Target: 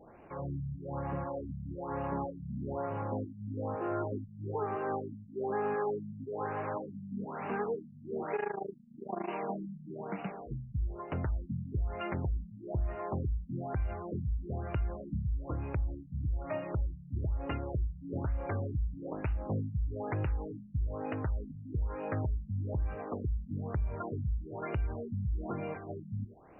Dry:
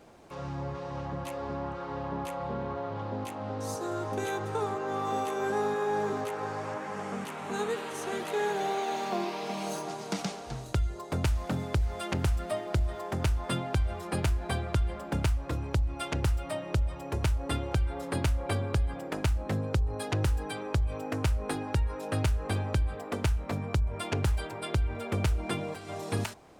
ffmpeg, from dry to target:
ffmpeg -i in.wav -filter_complex "[0:a]asettb=1/sr,asplit=3[link_01][link_02][link_03];[link_01]atrim=end=8.364[link_04];[link_02]atrim=start=8.36:end=9.29,asetpts=PTS-STARTPTS,afade=type=in:duration=0.004:curve=qsin,afade=type=out:start_time=0.926:duration=0.004:curve=qsin,tremolo=f=27:d=0.919[link_05];[link_03]atrim=start=9.286[link_06];[link_04][link_05]acrossfade=duration=0.004:curve1=hsin:curve2=qsin[link_07];[link_07][link_06]acrossfade=duration=0.004:curve1=qsin:curve2=hsin,alimiter=limit=-24dB:level=0:latency=1:release=325,afftfilt=real='re*lt(b*sr/1024,220*pow(3000/220,0.5+0.5*sin(2*PI*1.1*pts/sr)))':imag='im*lt(b*sr/1024,220*pow(3000/220,0.5+0.5*sin(2*PI*1.1*pts/sr)))':win_size=1024:overlap=0.75" out.wav

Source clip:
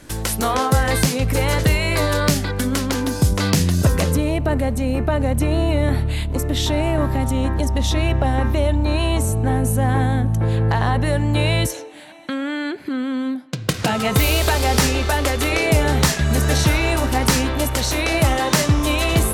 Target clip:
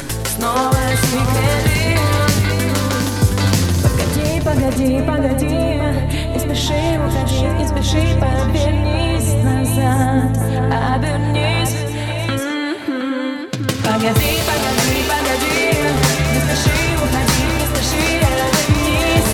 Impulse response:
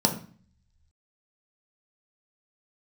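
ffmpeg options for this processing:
-filter_complex "[0:a]asettb=1/sr,asplit=3[link_01][link_02][link_03];[link_01]atrim=end=14.324[link_04];[link_02]atrim=start=14.32:end=15.96,asetpts=PTS-STARTPTS,afade=type=in:duration=0.004:curve=qsin,afade=type=out:start_time=1.636:duration=0.004:curve=qsin,highpass=frequency=140:poles=1[link_05];[link_03]atrim=start=15.956[link_06];[link_04][link_05]acrossfade=duration=0.004:curve1=hsin:curve2=qsin[link_07];[link_07][link_06]acrossfade=duration=0.004:curve1=qsin:curve2=hsin,asplit=2[link_08][link_09];[link_09]alimiter=limit=-16dB:level=0:latency=1:release=177,volume=1.5dB[link_10];[link_08][link_10]amix=inputs=2:normalize=0,acompressor=mode=upward:threshold=-17dB:ratio=2.5,flanger=delay=7.2:depth=2.6:regen=30:speed=0.19:shape=triangular,aecho=1:1:102|213|533|720:0.133|0.237|0.168|0.447,volume=2dB"

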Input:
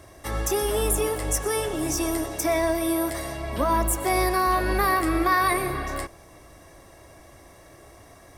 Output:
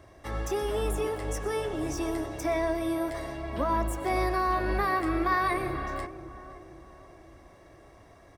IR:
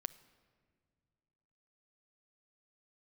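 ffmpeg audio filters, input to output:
-filter_complex "[0:a]equalizer=frequency=12000:width=0.46:gain=-14,asplit=2[link_01][link_02];[link_02]adelay=526,lowpass=frequency=1100:poles=1,volume=-12.5dB,asplit=2[link_03][link_04];[link_04]adelay=526,lowpass=frequency=1100:poles=1,volume=0.52,asplit=2[link_05][link_06];[link_06]adelay=526,lowpass=frequency=1100:poles=1,volume=0.52,asplit=2[link_07][link_08];[link_08]adelay=526,lowpass=frequency=1100:poles=1,volume=0.52,asplit=2[link_09][link_10];[link_10]adelay=526,lowpass=frequency=1100:poles=1,volume=0.52[link_11];[link_01][link_03][link_05][link_07][link_09][link_11]amix=inputs=6:normalize=0,volume=-4.5dB"

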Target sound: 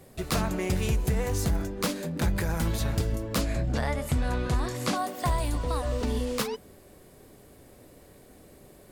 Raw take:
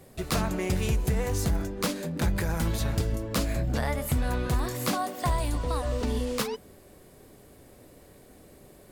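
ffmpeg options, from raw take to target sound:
ffmpeg -i in.wav -filter_complex "[0:a]asettb=1/sr,asplit=3[link_01][link_02][link_03];[link_01]atrim=end=3.414[link_04];[link_02]atrim=start=3.41:end=4.96,asetpts=PTS-STARTPTS,afade=type=in:duration=0.004:curve=qsin,afade=type=out:start_time=1.546:duration=0.004:curve=qsin,lowpass=9000[link_05];[link_03]atrim=start=4.956[link_06];[link_04][link_05]acrossfade=duration=0.004:curve1=hsin:curve2=qsin[link_07];[link_07][link_06]acrossfade=duration=0.004:curve1=qsin:curve2=hsin" out.wav

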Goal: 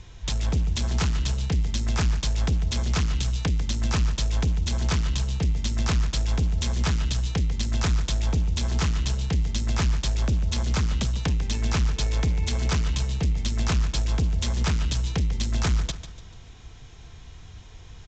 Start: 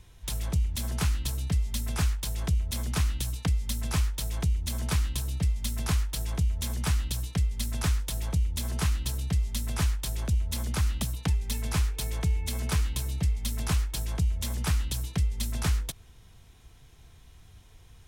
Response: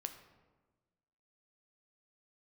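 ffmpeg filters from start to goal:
-af "aresample=16000,asoftclip=type=tanh:threshold=-28dB,aresample=44100,aecho=1:1:146|292|438|584:0.237|0.0925|0.0361|0.0141,volume=8.5dB"

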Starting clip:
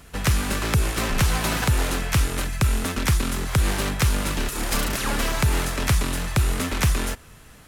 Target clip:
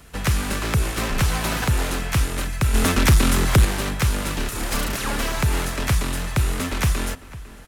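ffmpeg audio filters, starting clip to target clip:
ffmpeg -i in.wav -filter_complex "[0:a]acrossover=split=360|2900[link_01][link_02][link_03];[link_03]asoftclip=type=tanh:threshold=-21dB[link_04];[link_01][link_02][link_04]amix=inputs=3:normalize=0,asplit=2[link_05][link_06];[link_06]adelay=501.5,volume=-17dB,highshelf=frequency=4000:gain=-11.3[link_07];[link_05][link_07]amix=inputs=2:normalize=0,asettb=1/sr,asplit=3[link_08][link_09][link_10];[link_08]atrim=end=2.744[link_11];[link_09]atrim=start=2.74:end=3.65,asetpts=PTS-STARTPTS,afade=type=in:duration=0.004:curve=qsin,afade=type=out:start_time=0.906:duration=0.004:curve=qsin,aeval=exprs='0.355*sin(PI/2*1.58*val(0)/0.355)':channel_layout=same[link_12];[link_10]atrim=start=3.646[link_13];[link_11][link_12]acrossfade=duration=0.004:curve1=hsin:curve2=qsin[link_14];[link_14][link_13]acrossfade=duration=0.004:curve1=qsin:curve2=hsin" out.wav

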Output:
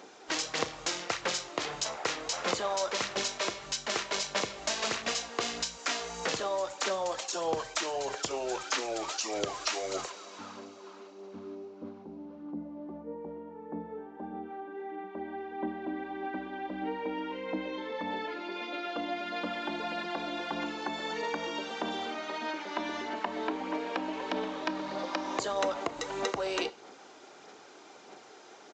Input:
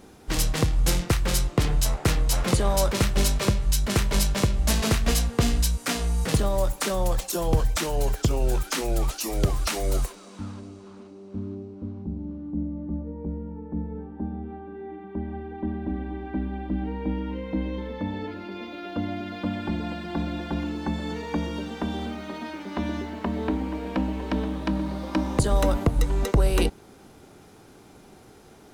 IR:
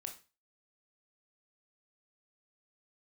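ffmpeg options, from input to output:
-filter_complex "[0:a]highpass=510,acompressor=threshold=-33dB:ratio=2.5,aphaser=in_gain=1:out_gain=1:delay=3.2:decay=0.32:speed=1.6:type=sinusoidal,asplit=2[link_01][link_02];[1:a]atrim=start_sample=2205,asetrate=37044,aresample=44100[link_03];[link_02][link_03]afir=irnorm=-1:irlink=0,volume=-6.5dB[link_04];[link_01][link_04]amix=inputs=2:normalize=0,aresample=16000,aresample=44100"

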